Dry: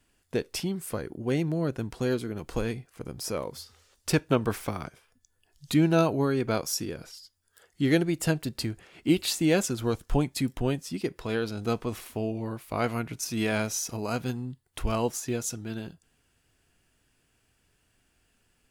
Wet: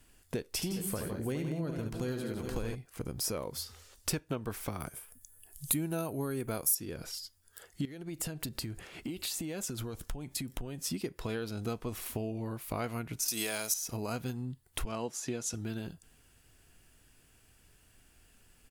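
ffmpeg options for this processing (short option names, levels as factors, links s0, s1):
-filter_complex "[0:a]asplit=3[s0][s1][s2];[s0]afade=t=out:st=0.6:d=0.02[s3];[s1]aecho=1:1:72|162|192|413:0.447|0.355|0.2|0.237,afade=t=in:st=0.6:d=0.02,afade=t=out:st=2.74:d=0.02[s4];[s2]afade=t=in:st=2.74:d=0.02[s5];[s3][s4][s5]amix=inputs=3:normalize=0,asettb=1/sr,asplit=3[s6][s7][s8];[s6]atrim=end=4.804[s9];[s7]atrim=start=4.8:end=6.75,asetpts=PTS-STARTPTS,afade=t=in:d=0.004:c=qsin,afade=t=out:st=1.946:d=0.004:c=qsin,highshelf=f=7300:t=q:w=1.5:g=12.5[s10];[s8]atrim=start=6.746[s11];[s9][s10]acrossfade=d=0.004:c1=hsin:c2=qsin[s12];[s12][s11]acrossfade=d=0.004:c1=qsin:c2=hsin,asettb=1/sr,asplit=3[s13][s14][s15];[s13]atrim=end=7.854[s16];[s14]atrim=start=7.85:end=10.83,asetpts=PTS-STARTPTS,afade=t=in:d=0.004:c=qsin,afade=t=out:st=2.976:d=0.004:c=qsin,acompressor=threshold=0.0141:ratio=8:attack=3.2:release=140:knee=1:detection=peak[s17];[s15]atrim=start=10.826[s18];[s16][s17]acrossfade=d=0.004:c1=hsin:c2=qsin[s19];[s19][s18]acrossfade=d=0.004:c1=qsin:c2=hsin,asettb=1/sr,asplit=3[s20][s21][s22];[s20]atrim=end=13.284[s23];[s21]atrim=start=13.28:end=13.74,asetpts=PTS-STARTPTS,afade=t=in:d=0.004:c=qsin,afade=t=out:st=0.456:d=0.004:c=qsin,bass=f=250:g=-14,treble=f=4000:g=15[s24];[s22]atrim=start=13.736[s25];[s23][s24]acrossfade=d=0.004:c1=hsin:c2=qsin[s26];[s26][s25]acrossfade=d=0.004:c1=qsin:c2=hsin,asettb=1/sr,asplit=3[s27][s28][s29];[s27]atrim=end=14.854[s30];[s28]atrim=start=14.85:end=15.54,asetpts=PTS-STARTPTS,afade=t=in:d=0.004:c=qsin,afade=t=out:st=0.686:d=0.004:c=qsin,highpass=140,lowpass=7900[s31];[s29]atrim=start=15.536[s32];[s30][s31]acrossfade=d=0.004:c1=hsin:c2=qsin[s33];[s33][s32]acrossfade=d=0.004:c1=qsin:c2=hsin,lowshelf=f=65:g=7.5,acompressor=threshold=0.0126:ratio=4,equalizer=f=15000:t=o:w=1.1:g=7.5,volume=1.5"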